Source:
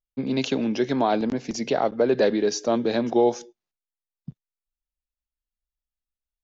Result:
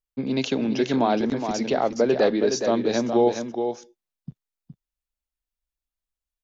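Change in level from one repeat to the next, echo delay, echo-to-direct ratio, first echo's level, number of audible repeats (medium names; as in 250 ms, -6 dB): no regular repeats, 417 ms, -7.0 dB, -7.0 dB, 1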